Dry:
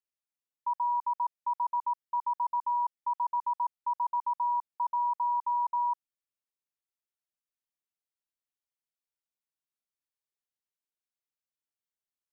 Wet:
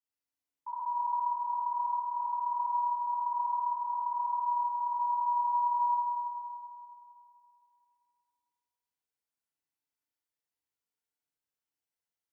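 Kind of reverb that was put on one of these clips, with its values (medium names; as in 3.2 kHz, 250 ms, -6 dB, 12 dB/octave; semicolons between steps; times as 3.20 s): FDN reverb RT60 2.6 s, low-frequency decay 0.75×, high-frequency decay 0.5×, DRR -9.5 dB; trim -8.5 dB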